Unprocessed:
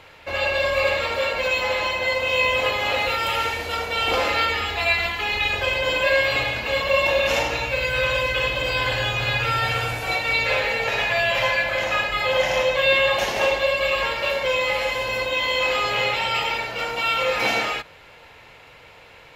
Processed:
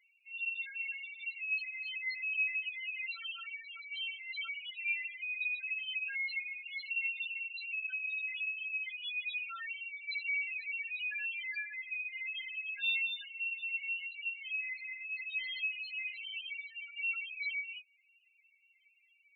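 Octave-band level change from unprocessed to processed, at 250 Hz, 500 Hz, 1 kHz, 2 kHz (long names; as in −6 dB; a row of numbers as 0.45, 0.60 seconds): below −40 dB, below −40 dB, −35.5 dB, −13.5 dB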